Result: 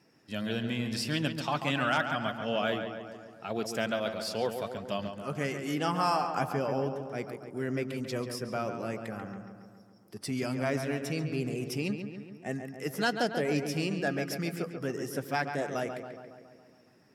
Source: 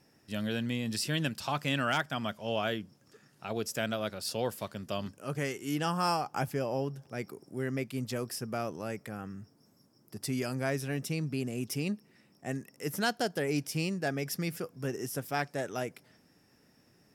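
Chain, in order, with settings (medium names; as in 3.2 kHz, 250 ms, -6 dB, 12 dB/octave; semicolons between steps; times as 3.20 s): coarse spectral quantiser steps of 15 dB; high-pass 180 Hz 6 dB/octave; treble shelf 8 kHz -10 dB; filtered feedback delay 139 ms, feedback 63%, low-pass 3 kHz, level -7 dB; trim +2.5 dB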